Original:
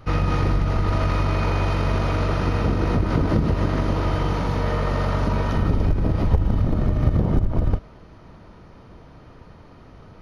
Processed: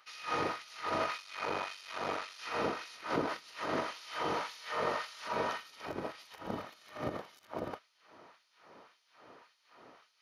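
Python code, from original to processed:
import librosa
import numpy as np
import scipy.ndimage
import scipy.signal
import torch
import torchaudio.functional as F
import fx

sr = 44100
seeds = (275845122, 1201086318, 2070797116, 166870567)

y = fx.tube_stage(x, sr, drive_db=15.0, bias=0.65, at=(1.17, 2.39))
y = fx.filter_lfo_highpass(y, sr, shape='sine', hz=1.8, low_hz=360.0, high_hz=4500.0, q=0.77)
y = y * 10.0 ** (-4.5 / 20.0)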